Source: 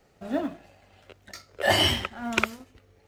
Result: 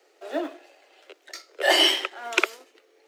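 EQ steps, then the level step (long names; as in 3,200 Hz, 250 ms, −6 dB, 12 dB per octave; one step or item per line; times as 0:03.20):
Butterworth high-pass 320 Hz 72 dB per octave
parametric band 920 Hz −7 dB 2.5 octaves
high-shelf EQ 7,300 Hz −8 dB
+7.5 dB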